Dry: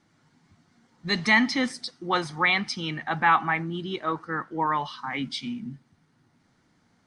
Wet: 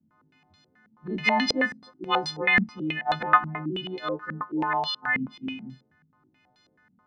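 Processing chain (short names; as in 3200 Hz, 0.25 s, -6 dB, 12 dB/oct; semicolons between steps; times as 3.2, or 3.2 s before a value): frequency quantiser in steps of 3 st; stepped low-pass 9.3 Hz 210–4000 Hz; gain -4 dB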